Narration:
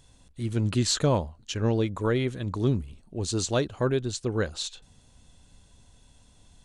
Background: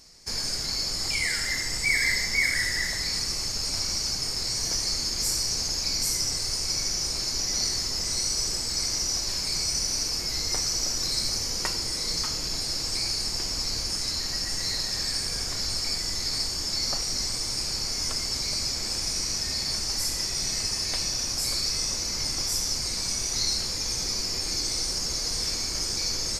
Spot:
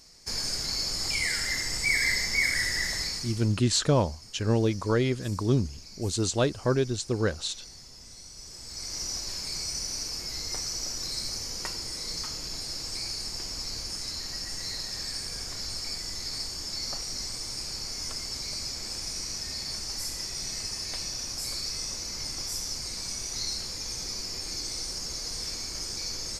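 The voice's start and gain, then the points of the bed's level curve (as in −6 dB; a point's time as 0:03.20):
2.85 s, +0.5 dB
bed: 0:03.02 −1.5 dB
0:03.64 −20 dB
0:08.32 −20 dB
0:09.02 −6 dB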